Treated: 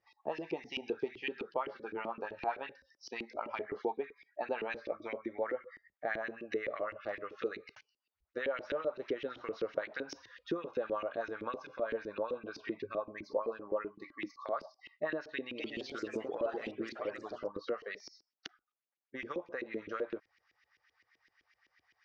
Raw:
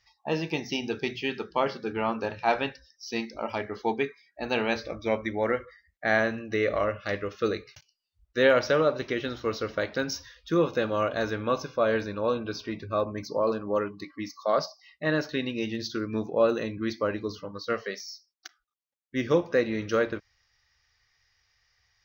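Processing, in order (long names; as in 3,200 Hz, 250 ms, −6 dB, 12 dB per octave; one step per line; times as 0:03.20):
downward compressor 6 to 1, threshold −34 dBFS, peak gain reduction 17 dB
auto-filter band-pass saw up 7.8 Hz 310–2,900 Hz
0:15.37–0:17.61: delay with pitch and tempo change per echo 212 ms, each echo +3 semitones, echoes 2, each echo −6 dB
level +6.5 dB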